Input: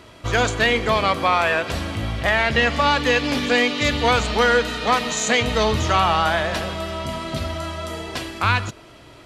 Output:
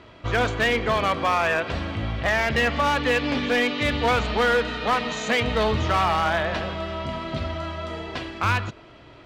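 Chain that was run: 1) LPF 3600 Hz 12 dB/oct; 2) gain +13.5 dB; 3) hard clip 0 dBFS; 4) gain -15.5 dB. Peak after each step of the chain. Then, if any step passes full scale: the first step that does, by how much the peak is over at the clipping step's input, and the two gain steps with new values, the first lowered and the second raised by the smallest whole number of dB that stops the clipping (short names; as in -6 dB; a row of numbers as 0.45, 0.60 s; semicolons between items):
-5.5, +8.0, 0.0, -15.5 dBFS; step 2, 8.0 dB; step 2 +5.5 dB, step 4 -7.5 dB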